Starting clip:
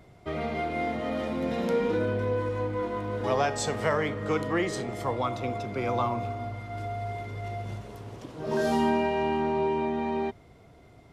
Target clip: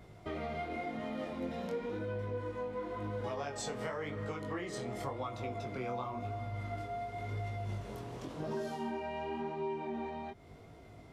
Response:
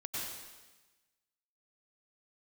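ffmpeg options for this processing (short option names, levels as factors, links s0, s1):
-af "acompressor=threshold=0.0158:ratio=6,flanger=delay=18:depth=6.4:speed=0.93,volume=1.33"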